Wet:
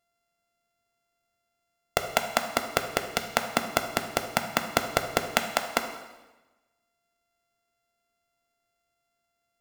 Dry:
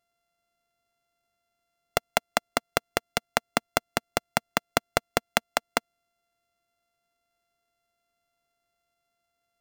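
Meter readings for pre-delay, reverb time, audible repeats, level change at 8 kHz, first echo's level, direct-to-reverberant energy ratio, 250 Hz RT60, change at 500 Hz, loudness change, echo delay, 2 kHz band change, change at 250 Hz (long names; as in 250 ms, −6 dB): 9 ms, 1.1 s, no echo audible, +1.0 dB, no echo audible, 5.5 dB, 1.2 s, +1.0 dB, +1.0 dB, no echo audible, +1.0 dB, +1.5 dB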